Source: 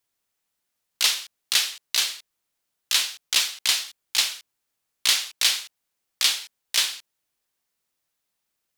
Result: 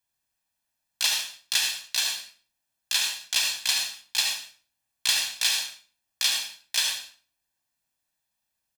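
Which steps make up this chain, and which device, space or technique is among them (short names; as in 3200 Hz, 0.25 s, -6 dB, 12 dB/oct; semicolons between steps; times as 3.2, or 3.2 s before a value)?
microphone above a desk (comb 1.2 ms, depth 60%; reverb RT60 0.40 s, pre-delay 66 ms, DRR 3 dB); gain -5 dB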